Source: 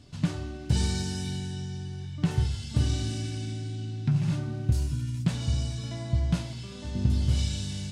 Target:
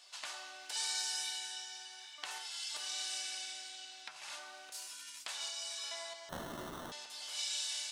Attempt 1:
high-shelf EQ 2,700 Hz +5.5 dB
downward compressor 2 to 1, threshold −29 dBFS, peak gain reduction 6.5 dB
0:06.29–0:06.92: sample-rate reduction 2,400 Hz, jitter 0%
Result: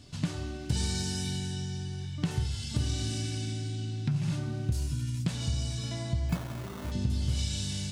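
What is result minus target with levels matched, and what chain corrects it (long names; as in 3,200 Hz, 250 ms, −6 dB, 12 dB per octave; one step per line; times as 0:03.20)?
1,000 Hz band −6.0 dB
high-shelf EQ 2,700 Hz +5.5 dB
downward compressor 2 to 1, threshold −29 dBFS, peak gain reduction 6.5 dB
high-pass filter 750 Hz 24 dB per octave
0:06.29–0:06.92: sample-rate reduction 2,400 Hz, jitter 0%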